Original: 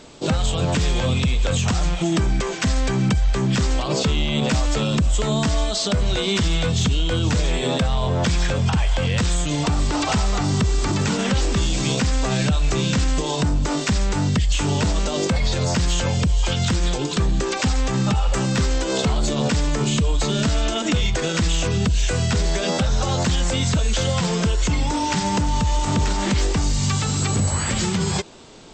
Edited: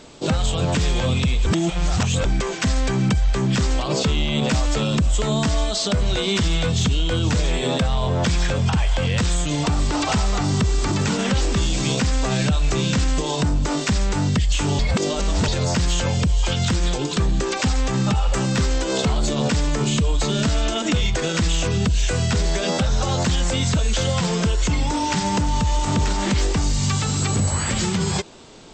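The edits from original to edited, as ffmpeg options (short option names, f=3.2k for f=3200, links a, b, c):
-filter_complex "[0:a]asplit=5[a][b][c][d][e];[a]atrim=end=1.462[f];[b]atrim=start=1.458:end=2.252,asetpts=PTS-STARTPTS,areverse[g];[c]atrim=start=2.248:end=14.792[h];[d]atrim=start=14.788:end=15.482,asetpts=PTS-STARTPTS,areverse[i];[e]atrim=start=15.478[j];[f][g]acrossfade=d=0.004:c1=hsin:c2=hsin[k];[k][h]acrossfade=d=0.004:c1=hsin:c2=hsin[l];[l][i]acrossfade=d=0.004:c1=hsin:c2=hsin[m];[m][j]acrossfade=d=0.004:c1=hsin:c2=hsin"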